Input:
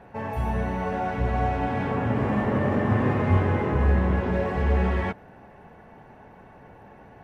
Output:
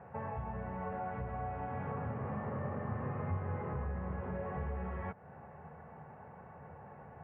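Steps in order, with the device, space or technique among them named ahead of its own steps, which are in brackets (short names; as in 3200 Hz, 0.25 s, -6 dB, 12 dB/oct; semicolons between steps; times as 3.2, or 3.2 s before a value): bass amplifier (compressor 3:1, threshold -35 dBFS, peak gain reduction 14.5 dB; speaker cabinet 66–2300 Hz, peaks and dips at 82 Hz +10 dB, 150 Hz +10 dB, 300 Hz -7 dB, 510 Hz +5 dB, 790 Hz +4 dB, 1200 Hz +7 dB); gain -7 dB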